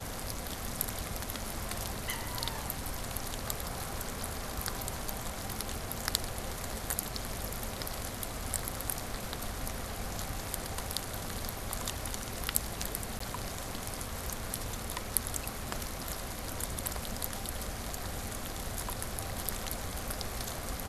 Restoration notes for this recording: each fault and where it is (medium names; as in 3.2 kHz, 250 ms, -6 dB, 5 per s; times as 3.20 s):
13.19–13.20 s: dropout 14 ms